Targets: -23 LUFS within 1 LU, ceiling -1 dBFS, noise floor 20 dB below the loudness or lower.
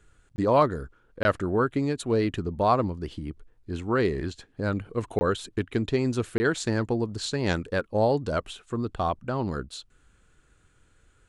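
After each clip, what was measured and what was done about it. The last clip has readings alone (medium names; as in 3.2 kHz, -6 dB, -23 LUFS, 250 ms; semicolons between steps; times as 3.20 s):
dropouts 4; longest dropout 20 ms; loudness -27.5 LUFS; peak level -9.0 dBFS; loudness target -23.0 LUFS
-> interpolate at 0.36/1.23/5.19/6.38 s, 20 ms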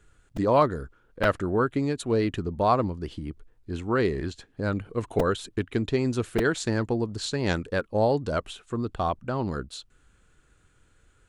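dropouts 0; loudness -27.0 LUFS; peak level -9.0 dBFS; loudness target -23.0 LUFS
-> trim +4 dB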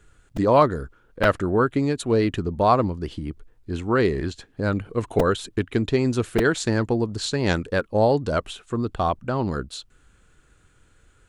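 loudness -23.0 LUFS; peak level -5.0 dBFS; noise floor -59 dBFS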